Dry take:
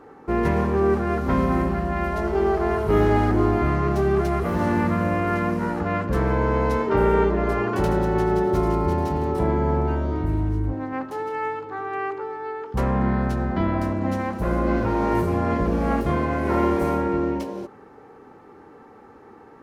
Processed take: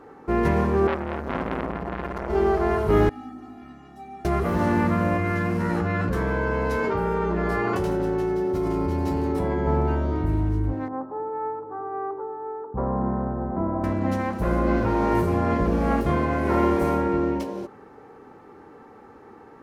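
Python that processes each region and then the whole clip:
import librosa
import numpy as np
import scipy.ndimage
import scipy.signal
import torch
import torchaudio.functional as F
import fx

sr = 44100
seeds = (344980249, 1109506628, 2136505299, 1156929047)

y = fx.chain(x, sr, fx.high_shelf(hz=4300.0, db=-6.0),
    fx.transformer_sat(knee_hz=1300.0), at=(0.87, 2.3))
y = fx.chain(y, sr, fx.tube_stage(drive_db=17.0, bias=0.45),
    fx.comb_fb(f0_hz=260.0, decay_s=0.19, harmonics='odd', damping=0.0, mix_pct=100), at=(3.09, 4.25))
y = fx.chain(y, sr, fx.comb_fb(f0_hz=91.0, decay_s=0.21, harmonics='all', damping=0.0, mix_pct=90),
    fx.env_flatten(amount_pct=100), at=(5.17, 9.67))
y = fx.chain(y, sr, fx.lowpass(hz=1100.0, slope=24),
    fx.low_shelf(hz=200.0, db=-7.5), at=(10.88, 13.84))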